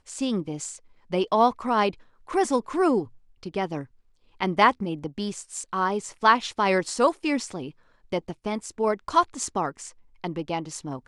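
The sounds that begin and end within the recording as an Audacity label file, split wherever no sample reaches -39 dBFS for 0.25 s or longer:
1.110000	1.940000	sound
2.290000	3.070000	sound
3.430000	3.840000	sound
4.410000	7.710000	sound
8.120000	9.900000	sound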